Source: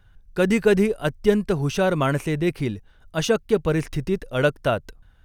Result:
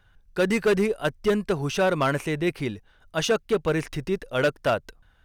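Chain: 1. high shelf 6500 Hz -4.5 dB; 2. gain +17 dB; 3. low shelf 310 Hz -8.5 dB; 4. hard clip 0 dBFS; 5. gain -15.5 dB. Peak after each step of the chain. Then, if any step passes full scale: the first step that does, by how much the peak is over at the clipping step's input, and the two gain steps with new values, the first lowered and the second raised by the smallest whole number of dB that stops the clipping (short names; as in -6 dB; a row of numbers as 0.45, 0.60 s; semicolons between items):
-5.5, +11.5, +8.5, 0.0, -15.5 dBFS; step 2, 8.5 dB; step 2 +8 dB, step 5 -6.5 dB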